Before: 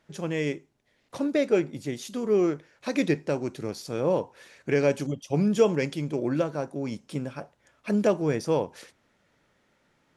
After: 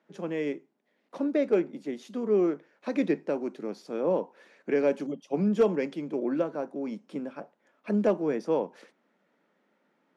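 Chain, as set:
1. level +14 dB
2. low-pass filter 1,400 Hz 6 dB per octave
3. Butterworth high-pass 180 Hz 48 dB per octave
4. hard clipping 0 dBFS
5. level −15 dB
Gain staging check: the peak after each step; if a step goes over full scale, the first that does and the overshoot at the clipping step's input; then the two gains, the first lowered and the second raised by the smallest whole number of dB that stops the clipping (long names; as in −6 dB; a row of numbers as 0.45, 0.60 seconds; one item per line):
+5.0, +4.0, +4.5, 0.0, −15.0 dBFS
step 1, 4.5 dB
step 1 +9 dB, step 5 −10 dB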